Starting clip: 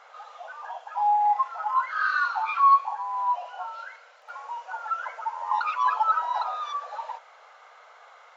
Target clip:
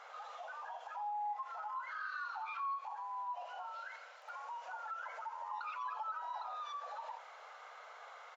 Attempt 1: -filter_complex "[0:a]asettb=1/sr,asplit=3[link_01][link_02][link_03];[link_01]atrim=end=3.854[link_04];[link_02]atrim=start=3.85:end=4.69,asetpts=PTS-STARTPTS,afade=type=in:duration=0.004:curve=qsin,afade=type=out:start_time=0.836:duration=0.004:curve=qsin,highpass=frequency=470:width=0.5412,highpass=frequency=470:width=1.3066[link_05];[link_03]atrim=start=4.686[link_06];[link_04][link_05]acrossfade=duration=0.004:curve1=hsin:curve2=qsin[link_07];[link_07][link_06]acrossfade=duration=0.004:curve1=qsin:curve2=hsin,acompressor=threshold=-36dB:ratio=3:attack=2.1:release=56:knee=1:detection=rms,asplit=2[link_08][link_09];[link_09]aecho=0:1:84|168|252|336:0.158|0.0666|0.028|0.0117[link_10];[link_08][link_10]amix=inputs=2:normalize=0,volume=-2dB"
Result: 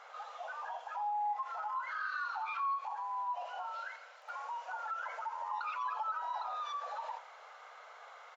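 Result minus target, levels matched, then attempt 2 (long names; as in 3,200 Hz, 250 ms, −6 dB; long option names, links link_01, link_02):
downward compressor: peak gain reduction −4.5 dB
-filter_complex "[0:a]asettb=1/sr,asplit=3[link_01][link_02][link_03];[link_01]atrim=end=3.854[link_04];[link_02]atrim=start=3.85:end=4.69,asetpts=PTS-STARTPTS,afade=type=in:duration=0.004:curve=qsin,afade=type=out:start_time=0.836:duration=0.004:curve=qsin,highpass=frequency=470:width=0.5412,highpass=frequency=470:width=1.3066[link_05];[link_03]atrim=start=4.686[link_06];[link_04][link_05]acrossfade=duration=0.004:curve1=hsin:curve2=qsin[link_07];[link_07][link_06]acrossfade=duration=0.004:curve1=qsin:curve2=hsin,acompressor=threshold=-42.5dB:ratio=3:attack=2.1:release=56:knee=1:detection=rms,asplit=2[link_08][link_09];[link_09]aecho=0:1:84|168|252|336:0.158|0.0666|0.028|0.0117[link_10];[link_08][link_10]amix=inputs=2:normalize=0,volume=-2dB"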